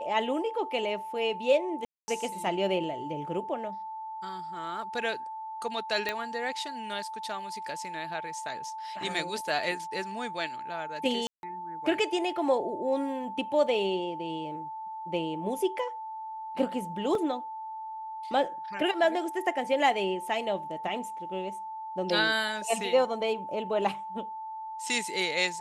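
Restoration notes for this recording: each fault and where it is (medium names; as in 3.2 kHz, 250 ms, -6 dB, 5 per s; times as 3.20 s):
whine 880 Hz -36 dBFS
1.85–2.08 s: dropout 230 ms
6.09 s: pop -15 dBFS
11.27–11.43 s: dropout 161 ms
17.15 s: dropout 2.5 ms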